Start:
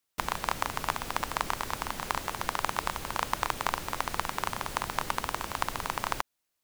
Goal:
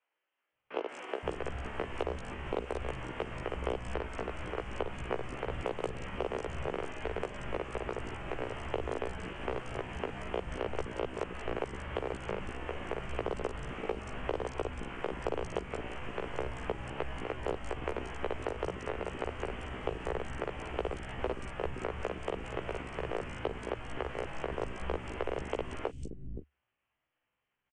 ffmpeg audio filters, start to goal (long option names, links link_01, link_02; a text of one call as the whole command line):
ffmpeg -i in.wav -filter_complex "[0:a]equalizer=frequency=170:width=2.2:gain=5,aresample=16000,aeval=exprs='clip(val(0),-1,0.188)':channel_layout=same,aresample=44100,atempo=0.56,acrossover=split=270|2300[link_01][link_02][link_03];[link_02]acrusher=bits=5:mode=log:mix=0:aa=0.000001[link_04];[link_01][link_04][link_03]amix=inputs=3:normalize=0,aecho=1:1:6.8:0.95,asetrate=18846,aresample=44100,acompressor=threshold=-29dB:ratio=2.5,acrossover=split=290|4300[link_05][link_06][link_07];[link_07]adelay=180[link_08];[link_05]adelay=520[link_09];[link_09][link_06][link_08]amix=inputs=3:normalize=0,volume=-1.5dB" out.wav